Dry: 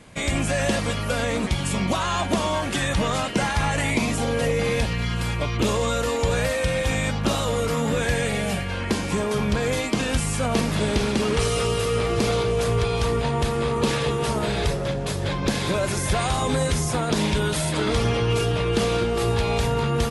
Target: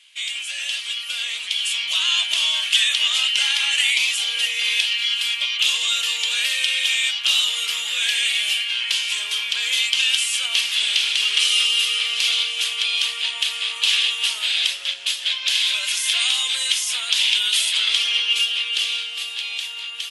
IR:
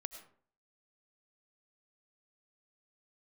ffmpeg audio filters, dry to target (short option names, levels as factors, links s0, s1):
-af "dynaudnorm=f=190:g=17:m=2.66,highpass=f=3000:t=q:w=4.6,volume=0.708"